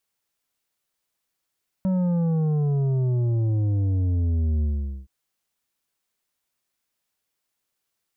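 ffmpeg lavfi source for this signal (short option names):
-f lavfi -i "aevalsrc='0.0944*clip((3.22-t)/0.45,0,1)*tanh(2.51*sin(2*PI*190*3.22/log(65/190)*(exp(log(65/190)*t/3.22)-1)))/tanh(2.51)':d=3.22:s=44100"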